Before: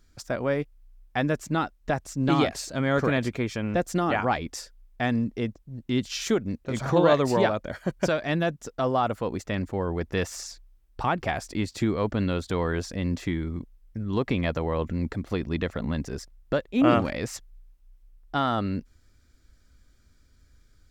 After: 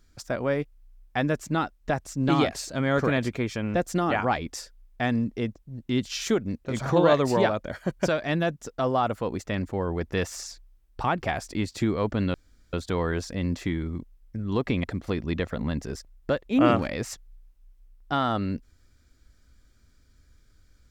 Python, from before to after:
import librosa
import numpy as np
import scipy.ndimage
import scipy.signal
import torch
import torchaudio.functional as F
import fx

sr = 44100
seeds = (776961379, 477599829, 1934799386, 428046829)

y = fx.edit(x, sr, fx.insert_room_tone(at_s=12.34, length_s=0.39),
    fx.cut(start_s=14.45, length_s=0.62), tone=tone)